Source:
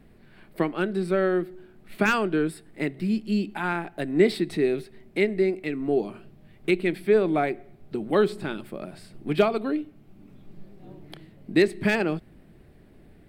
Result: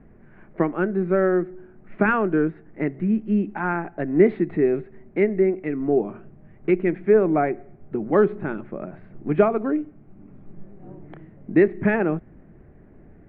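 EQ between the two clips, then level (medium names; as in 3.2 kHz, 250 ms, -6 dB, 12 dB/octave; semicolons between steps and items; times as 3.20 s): low-pass 2 kHz 24 dB/octave; distance through air 220 m; +4.0 dB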